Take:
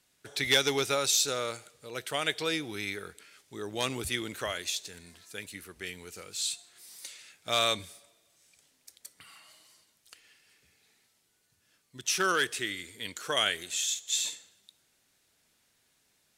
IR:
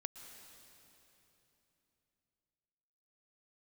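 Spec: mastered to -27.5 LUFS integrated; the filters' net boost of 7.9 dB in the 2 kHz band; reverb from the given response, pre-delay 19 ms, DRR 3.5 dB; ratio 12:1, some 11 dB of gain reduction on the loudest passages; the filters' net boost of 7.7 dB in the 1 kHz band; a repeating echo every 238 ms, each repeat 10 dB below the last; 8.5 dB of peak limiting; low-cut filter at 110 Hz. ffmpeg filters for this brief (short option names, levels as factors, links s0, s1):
-filter_complex "[0:a]highpass=110,equalizer=f=1000:t=o:g=7.5,equalizer=f=2000:t=o:g=7.5,acompressor=threshold=0.0501:ratio=12,alimiter=limit=0.0794:level=0:latency=1,aecho=1:1:238|476|714|952:0.316|0.101|0.0324|0.0104,asplit=2[s0][s1];[1:a]atrim=start_sample=2205,adelay=19[s2];[s1][s2]afir=irnorm=-1:irlink=0,volume=0.944[s3];[s0][s3]amix=inputs=2:normalize=0,volume=1.78"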